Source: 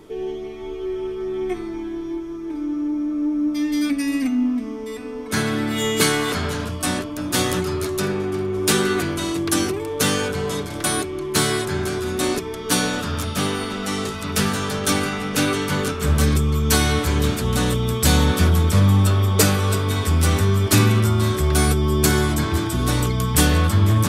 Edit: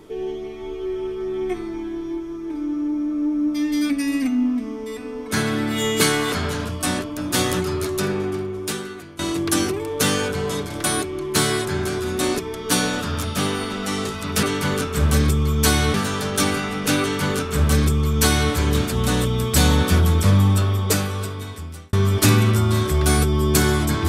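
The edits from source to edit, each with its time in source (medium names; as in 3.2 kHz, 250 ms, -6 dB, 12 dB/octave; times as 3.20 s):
8.27–9.19 s: fade out quadratic, to -17.5 dB
15.50–17.01 s: copy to 14.43 s
18.83–20.42 s: fade out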